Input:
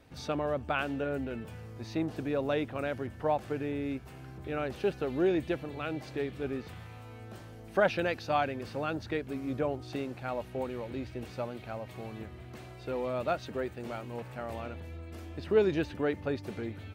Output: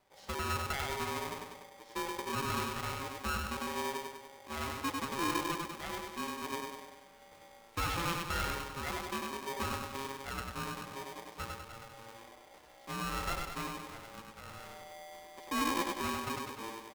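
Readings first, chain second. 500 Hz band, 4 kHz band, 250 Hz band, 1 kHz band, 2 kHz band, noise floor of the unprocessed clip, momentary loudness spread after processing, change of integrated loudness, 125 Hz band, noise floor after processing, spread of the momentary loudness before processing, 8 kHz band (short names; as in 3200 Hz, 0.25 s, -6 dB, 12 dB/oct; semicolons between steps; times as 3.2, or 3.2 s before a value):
-11.5 dB, +5.5 dB, -7.0 dB, +0.5 dB, -0.5 dB, -48 dBFS, 16 LU, -3.5 dB, -5.0 dB, -58 dBFS, 15 LU, n/a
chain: gate -36 dBFS, range -7 dB; overloaded stage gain 24.5 dB; feedback echo 98 ms, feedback 55%, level -3 dB; polarity switched at an audio rate 680 Hz; gain -6 dB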